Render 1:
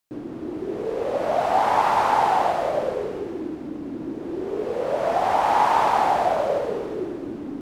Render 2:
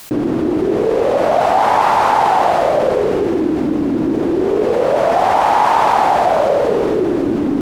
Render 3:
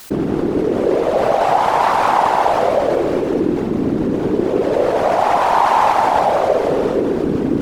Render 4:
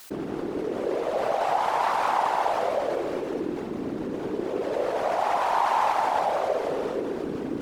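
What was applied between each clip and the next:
level flattener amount 70%; trim +4.5 dB
whisper effect; trim -1.5 dB
bass shelf 310 Hz -9.5 dB; trim -8.5 dB

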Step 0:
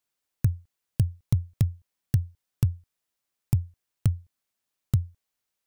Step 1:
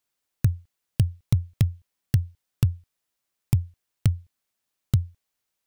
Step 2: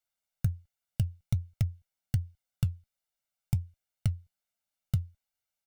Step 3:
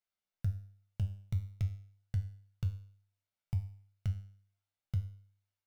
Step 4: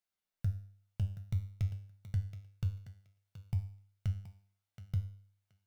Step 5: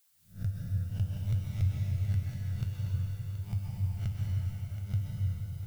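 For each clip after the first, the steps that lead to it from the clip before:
dynamic bell 2.9 kHz, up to +7 dB, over -60 dBFS, Q 0.76; trim +2 dB
comb 1.4 ms, depth 64%; flange 1.3 Hz, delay 2.2 ms, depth 4.4 ms, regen +70%; trim -5 dB
median filter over 5 samples; peak limiter -20 dBFS, peak gain reduction 5 dB; feedback comb 99 Hz, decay 0.55 s, harmonics all, mix 80%; trim +5.5 dB
thinning echo 725 ms, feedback 18%, high-pass 210 Hz, level -10 dB
reverse spectral sustain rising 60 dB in 0.31 s; added noise blue -69 dBFS; plate-style reverb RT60 4.3 s, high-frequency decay 0.85×, pre-delay 115 ms, DRR -4 dB

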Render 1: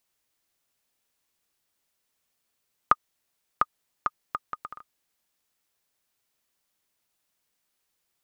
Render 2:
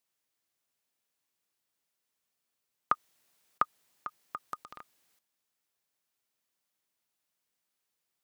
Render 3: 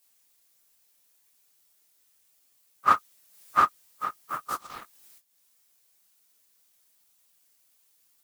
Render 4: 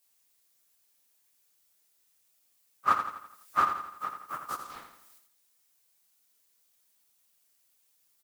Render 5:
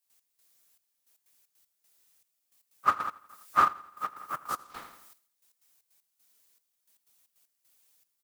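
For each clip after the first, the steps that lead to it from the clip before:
high-pass 94 Hz 12 dB/octave; transient shaper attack -3 dB, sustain +10 dB; level held to a coarse grid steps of 12 dB
phase randomisation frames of 100 ms; treble shelf 4.7 kHz +11 dB; transient shaper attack +3 dB, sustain -7 dB; trim +8.5 dB
feedback delay 84 ms, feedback 49%, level -8 dB; trim -4.5 dB
trance gate ".x..xxxx...x.xx" 155 bpm -12 dB; trim +3 dB

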